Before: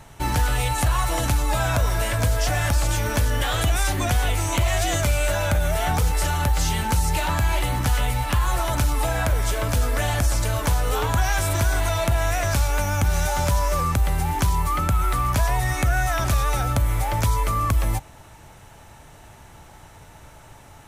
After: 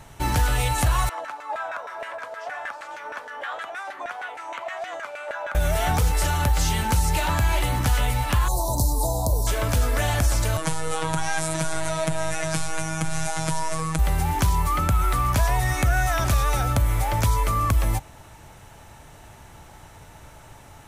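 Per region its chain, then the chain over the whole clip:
1.09–5.55 HPF 340 Hz + LFO band-pass saw down 6.4 Hz 640–1800 Hz
8.48–9.47 Chebyshev band-stop 1000–4100 Hz, order 4 + high shelf 9700 Hz +8 dB
10.57–13.99 robotiser 160 Hz + careless resampling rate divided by 2×, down none, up filtered
whole clip: dry

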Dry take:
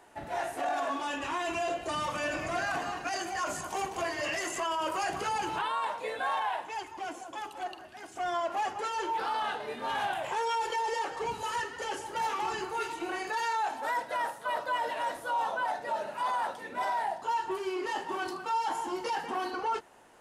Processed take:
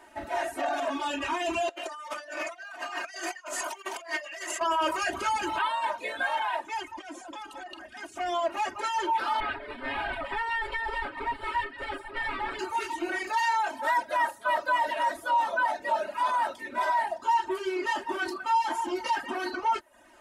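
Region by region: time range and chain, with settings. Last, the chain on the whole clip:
1.69–4.61 HPF 510 Hz + negative-ratio compressor -39 dBFS, ratio -0.5
6.97–8.04 LPF 11000 Hz 24 dB/oct + comb 3.8 ms, depth 38% + compressor 12:1, threshold -39 dBFS
9.4–12.59 minimum comb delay 7.2 ms + running mean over 7 samples
whole clip: comb 3.2 ms, depth 94%; reverb removal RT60 0.51 s; bell 1900 Hz +3.5 dB 1.5 oct

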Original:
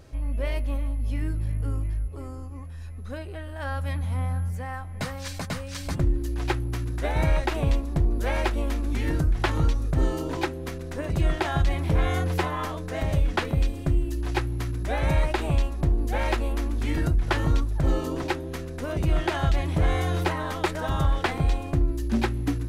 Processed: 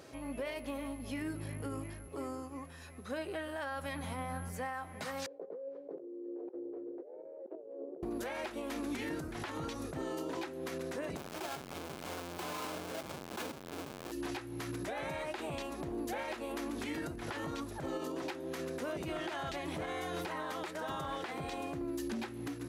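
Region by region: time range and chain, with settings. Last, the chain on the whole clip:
5.26–8.03 Butterworth band-pass 450 Hz, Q 2.8 + negative-ratio compressor -47 dBFS
11.17–14.12 half-waves squared off + notch 1900 Hz, Q 9.3 + negative-ratio compressor -28 dBFS
whole clip: HPF 250 Hz 12 dB/oct; compressor 6:1, threshold -35 dBFS; limiter -32 dBFS; gain +2 dB

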